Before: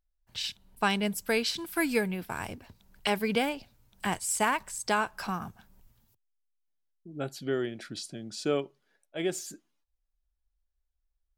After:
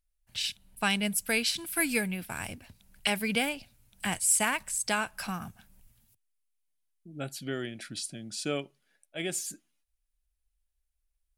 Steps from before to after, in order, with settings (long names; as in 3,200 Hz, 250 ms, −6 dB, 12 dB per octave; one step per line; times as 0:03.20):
graphic EQ with 15 bands 400 Hz −7 dB, 1,000 Hz −6 dB, 2,500 Hz +4 dB, 10,000 Hz +10 dB